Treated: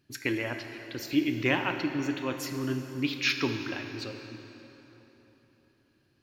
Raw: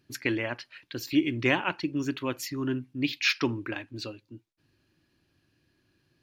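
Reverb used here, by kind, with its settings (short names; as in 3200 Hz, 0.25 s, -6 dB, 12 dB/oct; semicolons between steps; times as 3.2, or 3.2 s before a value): plate-style reverb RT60 3.7 s, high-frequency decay 0.75×, DRR 5.5 dB; gain -2 dB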